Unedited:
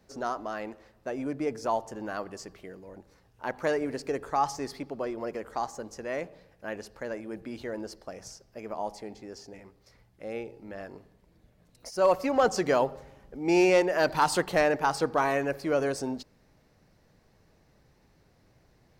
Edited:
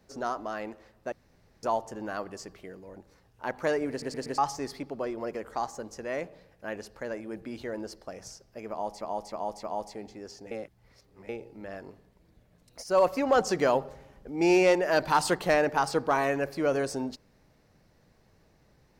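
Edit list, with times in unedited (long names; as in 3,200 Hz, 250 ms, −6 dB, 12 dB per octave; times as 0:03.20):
0:01.12–0:01.63: fill with room tone
0:03.90: stutter in place 0.12 s, 4 plays
0:08.70–0:09.01: repeat, 4 plays
0:09.58–0:10.36: reverse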